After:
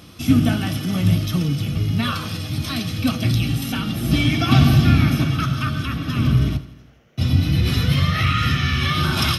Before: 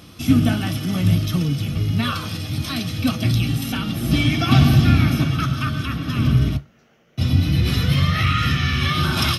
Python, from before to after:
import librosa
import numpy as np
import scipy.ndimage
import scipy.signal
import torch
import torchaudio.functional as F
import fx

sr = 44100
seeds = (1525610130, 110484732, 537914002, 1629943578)

y = fx.echo_feedback(x, sr, ms=83, feedback_pct=60, wet_db=-16.5)